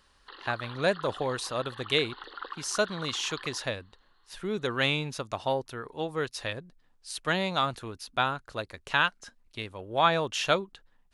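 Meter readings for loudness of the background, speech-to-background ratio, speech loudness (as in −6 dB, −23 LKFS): −43.5 LKFS, 13.5 dB, −30.0 LKFS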